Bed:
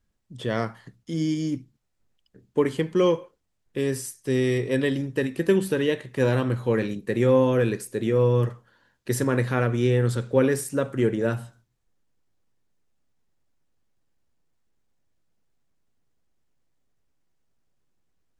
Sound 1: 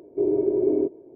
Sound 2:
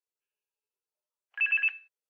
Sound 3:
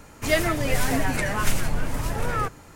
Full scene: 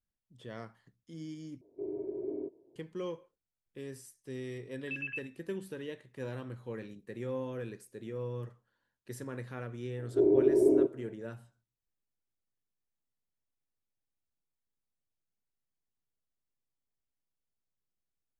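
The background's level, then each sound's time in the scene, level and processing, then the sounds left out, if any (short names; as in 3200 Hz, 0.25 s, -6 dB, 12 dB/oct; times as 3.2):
bed -18 dB
1.61 replace with 1 -16 dB
3.5 add 2 -13 dB
9.99 add 1 -2.5 dB
not used: 3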